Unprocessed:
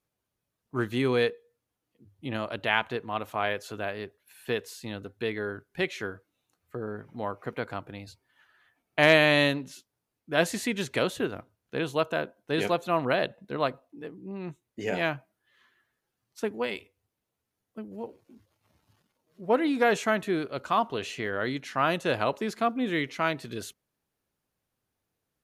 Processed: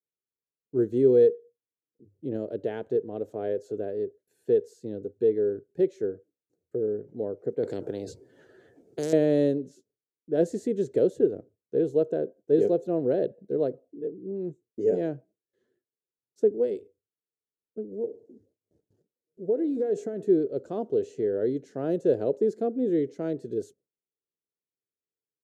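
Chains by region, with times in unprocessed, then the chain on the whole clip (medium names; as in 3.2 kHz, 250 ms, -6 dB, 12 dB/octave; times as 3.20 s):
7.63–9.13 s: treble shelf 8.5 kHz -5.5 dB + spectrum-flattening compressor 4:1
17.82–20.29 s: compression 10:1, threshold -27 dBFS + feedback echo behind a band-pass 66 ms, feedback 48%, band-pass 550 Hz, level -17.5 dB
whole clip: high-pass 110 Hz; gate with hold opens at -57 dBFS; FFT filter 240 Hz 0 dB, 440 Hz +11 dB, 1.1 kHz -27 dB, 1.6 kHz -18 dB, 2.4 kHz -27 dB, 7.4 kHz -10 dB, 11 kHz -21 dB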